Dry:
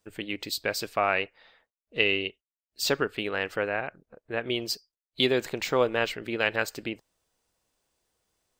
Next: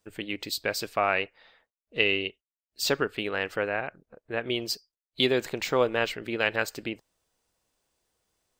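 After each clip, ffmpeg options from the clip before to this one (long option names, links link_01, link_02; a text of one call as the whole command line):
ffmpeg -i in.wav -af anull out.wav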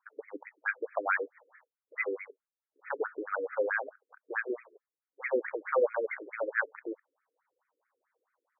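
ffmpeg -i in.wav -filter_complex "[0:a]highpass=frequency=200:width=0.5412,highpass=frequency=200:width=1.3066,equalizer=frequency=230:width_type=q:width=4:gain=-5,equalizer=frequency=360:width_type=q:width=4:gain=-7,equalizer=frequency=690:width_type=q:width=4:gain=-7,lowpass=frequency=2300:width=0.5412,lowpass=frequency=2300:width=1.3066,asplit=2[link_01][link_02];[link_02]highpass=frequency=720:poles=1,volume=17dB,asoftclip=type=tanh:threshold=-12dB[link_03];[link_01][link_03]amix=inputs=2:normalize=0,lowpass=frequency=1400:poles=1,volume=-6dB,afftfilt=real='re*between(b*sr/1024,350*pow(1800/350,0.5+0.5*sin(2*PI*4.6*pts/sr))/1.41,350*pow(1800/350,0.5+0.5*sin(2*PI*4.6*pts/sr))*1.41)':imag='im*between(b*sr/1024,350*pow(1800/350,0.5+0.5*sin(2*PI*4.6*pts/sr))/1.41,350*pow(1800/350,0.5+0.5*sin(2*PI*4.6*pts/sr))*1.41)':win_size=1024:overlap=0.75" out.wav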